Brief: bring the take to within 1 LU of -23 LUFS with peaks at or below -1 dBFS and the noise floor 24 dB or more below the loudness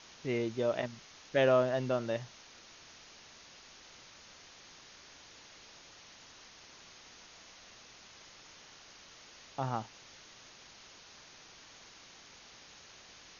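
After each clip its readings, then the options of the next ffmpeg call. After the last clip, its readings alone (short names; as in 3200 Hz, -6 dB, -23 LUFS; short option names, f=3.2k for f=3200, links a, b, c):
noise floor -56 dBFS; noise floor target -57 dBFS; loudness -33.0 LUFS; peak -15.5 dBFS; loudness target -23.0 LUFS
-> -af "afftdn=nr=6:nf=-56"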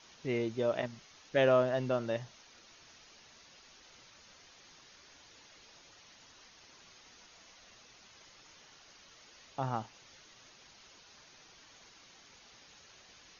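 noise floor -59 dBFS; loudness -33.0 LUFS; peak -16.0 dBFS; loudness target -23.0 LUFS
-> -af "volume=10dB"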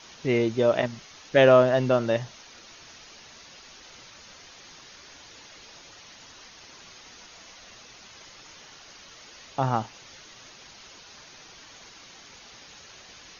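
loudness -23.0 LUFS; peak -6.0 dBFS; noise floor -49 dBFS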